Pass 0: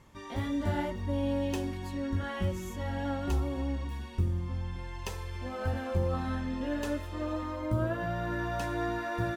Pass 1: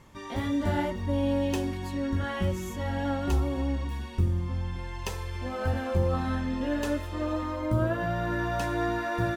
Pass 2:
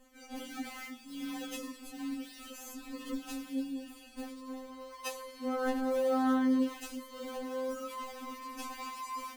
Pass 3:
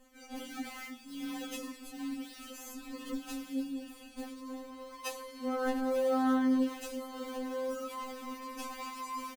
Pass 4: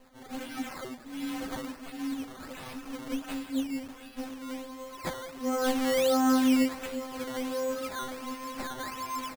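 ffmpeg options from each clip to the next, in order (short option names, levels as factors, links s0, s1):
-af "bandreject=f=50:t=h:w=6,bandreject=f=100:t=h:w=6,volume=1.58"
-filter_complex "[0:a]highshelf=f=5200:g=11.5,asplit=2[s0][s1];[s1]acrusher=samples=32:mix=1:aa=0.000001:lfo=1:lforange=51.2:lforate=0.74,volume=0.631[s2];[s0][s2]amix=inputs=2:normalize=0,afftfilt=real='re*3.46*eq(mod(b,12),0)':imag='im*3.46*eq(mod(b,12),0)':win_size=2048:overlap=0.75,volume=0.398"
-af "aecho=1:1:896|1792|2688|3584|4480:0.133|0.076|0.0433|0.0247|0.0141"
-af "acrusher=samples=12:mix=1:aa=0.000001:lfo=1:lforange=12:lforate=1.4,volume=1.68"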